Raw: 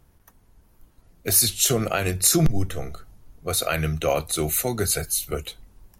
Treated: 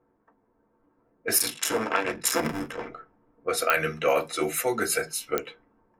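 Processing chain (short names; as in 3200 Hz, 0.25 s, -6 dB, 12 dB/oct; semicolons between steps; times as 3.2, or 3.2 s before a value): 1.38–2.88 cycle switcher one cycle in 2, muted; low-pass opened by the level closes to 760 Hz, open at -19 dBFS; low shelf 230 Hz -8.5 dB; reverb RT60 0.15 s, pre-delay 3 ms, DRR 1.5 dB; pops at 3.7/5.38, -3 dBFS; gain -4 dB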